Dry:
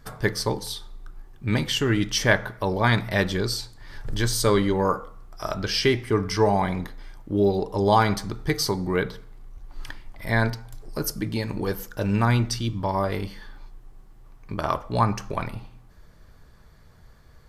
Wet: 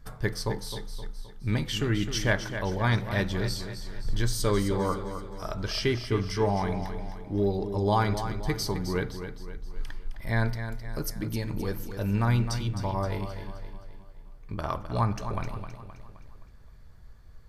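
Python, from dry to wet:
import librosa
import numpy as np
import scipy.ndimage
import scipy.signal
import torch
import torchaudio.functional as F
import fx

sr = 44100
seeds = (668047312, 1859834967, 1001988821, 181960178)

p1 = fx.low_shelf(x, sr, hz=98.0, db=11.0)
p2 = p1 + fx.echo_feedback(p1, sr, ms=261, feedback_pct=47, wet_db=-9.5, dry=0)
y = p2 * 10.0 ** (-7.0 / 20.0)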